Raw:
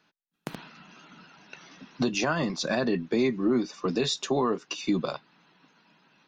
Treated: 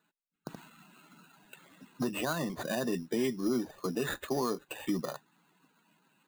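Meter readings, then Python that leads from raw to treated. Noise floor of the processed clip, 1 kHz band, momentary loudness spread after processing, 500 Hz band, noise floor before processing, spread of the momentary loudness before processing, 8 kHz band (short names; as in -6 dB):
-84 dBFS, -6.0 dB, 16 LU, -6.0 dB, -80 dBFS, 16 LU, -5.5 dB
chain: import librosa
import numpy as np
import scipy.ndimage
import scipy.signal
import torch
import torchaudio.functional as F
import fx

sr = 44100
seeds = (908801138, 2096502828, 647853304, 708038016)

y = fx.spec_topn(x, sr, count=64)
y = fx.sample_hold(y, sr, seeds[0], rate_hz=5400.0, jitter_pct=0)
y = F.gain(torch.from_numpy(y), -6.0).numpy()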